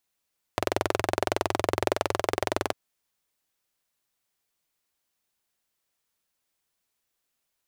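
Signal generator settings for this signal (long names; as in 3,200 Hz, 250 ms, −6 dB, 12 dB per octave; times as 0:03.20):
pulse-train model of a single-cylinder engine, steady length 2.15 s, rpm 2,600, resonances 100/390/590 Hz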